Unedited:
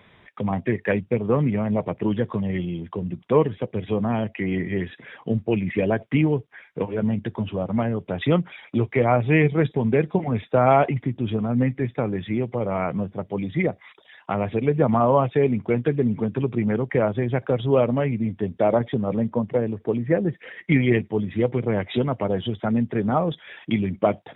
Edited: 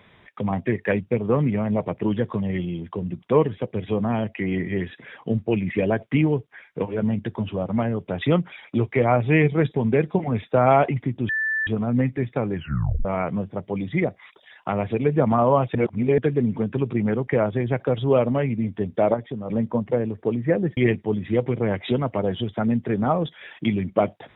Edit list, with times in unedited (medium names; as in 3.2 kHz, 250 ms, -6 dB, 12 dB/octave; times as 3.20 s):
11.29 s: add tone 1.76 kHz -21 dBFS 0.38 s
12.17 s: tape stop 0.50 s
15.37–15.80 s: reverse
18.76–19.12 s: gain -7 dB
20.39–20.83 s: delete